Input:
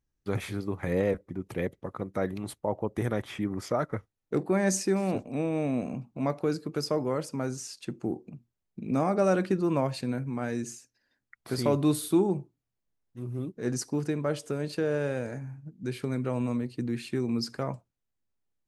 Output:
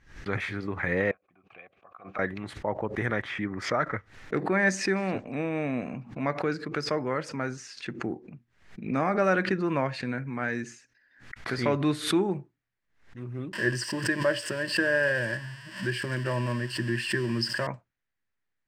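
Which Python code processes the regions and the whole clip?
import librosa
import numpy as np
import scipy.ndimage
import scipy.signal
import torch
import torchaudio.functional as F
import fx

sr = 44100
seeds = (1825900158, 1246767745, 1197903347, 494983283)

y = fx.chain(x, sr, fx.vowel_filter(vowel='a'),
    fx.peak_eq(hz=450.0, db=-9.0, octaves=2.2), at=(1.11, 2.19))
y = fx.chain(y, sr, fx.crossing_spikes(level_db=-28.0),
    fx.ripple_eq(per_octave=1.3, db=14), at=(13.53, 17.67))
y = scipy.signal.sosfilt(scipy.signal.butter(2, 5500.0, 'lowpass', fs=sr, output='sos'), y)
y = fx.peak_eq(y, sr, hz=1800.0, db=14.0, octaves=1.1)
y = fx.pre_swell(y, sr, db_per_s=120.0)
y = y * librosa.db_to_amplitude(-2.0)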